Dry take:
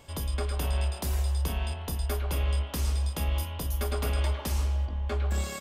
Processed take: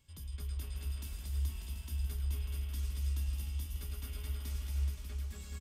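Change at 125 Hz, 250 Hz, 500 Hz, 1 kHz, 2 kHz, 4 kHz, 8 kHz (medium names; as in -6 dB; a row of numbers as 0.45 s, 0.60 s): -8.5 dB, -15.0 dB, -23.0 dB, -22.5 dB, -15.0 dB, -12.0 dB, -10.5 dB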